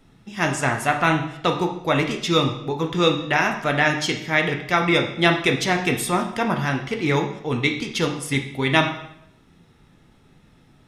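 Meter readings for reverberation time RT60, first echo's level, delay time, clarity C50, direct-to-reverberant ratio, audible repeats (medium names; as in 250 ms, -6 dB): 0.75 s, no echo, no echo, 8.0 dB, 3.0 dB, no echo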